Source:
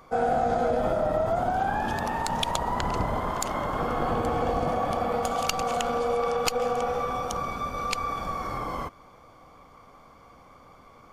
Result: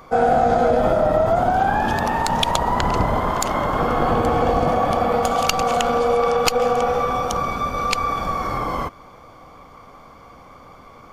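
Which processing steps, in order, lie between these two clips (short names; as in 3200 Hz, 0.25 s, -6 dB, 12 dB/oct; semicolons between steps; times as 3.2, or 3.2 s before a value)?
bell 9100 Hz -3 dB 0.9 oct; gain +8 dB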